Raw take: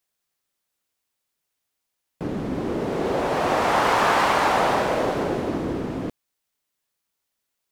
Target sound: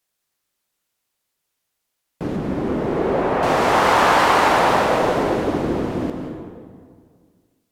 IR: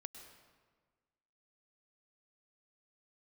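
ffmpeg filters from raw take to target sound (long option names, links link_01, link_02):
-filter_complex "[0:a]asettb=1/sr,asplit=3[link_01][link_02][link_03];[link_01]atrim=end=2.364[link_04];[link_02]atrim=start=2.36:end=3.43,asetpts=PTS-STARTPTS,afade=type=in:duration=0.004:curve=qsin,afade=type=out:start_time=1.066:duration=0.004:curve=qsin,acrossover=split=2600[link_05][link_06];[link_06]acompressor=threshold=-54dB:ratio=4:attack=1:release=60[link_07];[link_05][link_07]amix=inputs=2:normalize=0[link_08];[link_03]atrim=start=3.426[link_09];[link_04][link_08]acrossfade=duration=0.004:curve1=hsin:curve2=qsin[link_10];[link_10][link_09]acrossfade=duration=0.004:curve1=qsin:curve2=hsin[link_11];[1:a]atrim=start_sample=2205,asetrate=32193,aresample=44100[link_12];[link_11][link_12]afir=irnorm=-1:irlink=0,volume=7.5dB"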